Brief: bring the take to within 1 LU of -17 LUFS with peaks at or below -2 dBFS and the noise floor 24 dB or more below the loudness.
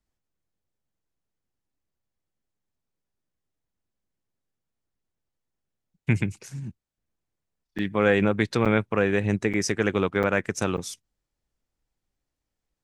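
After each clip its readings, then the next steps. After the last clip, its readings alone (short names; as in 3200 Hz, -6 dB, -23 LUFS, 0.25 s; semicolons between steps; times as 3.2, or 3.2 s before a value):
dropouts 5; longest dropout 6.8 ms; loudness -25.0 LUFS; peak -6.5 dBFS; loudness target -17.0 LUFS
-> interpolate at 7.78/8.65/9.53/10.23/10.77, 6.8 ms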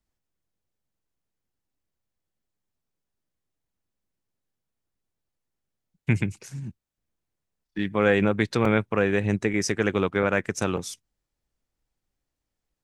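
dropouts 0; loudness -24.5 LUFS; peak -6.5 dBFS; loudness target -17.0 LUFS
-> gain +7.5 dB; limiter -2 dBFS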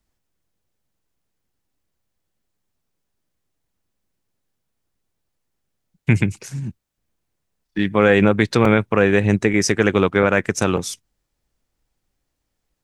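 loudness -17.5 LUFS; peak -2.0 dBFS; noise floor -77 dBFS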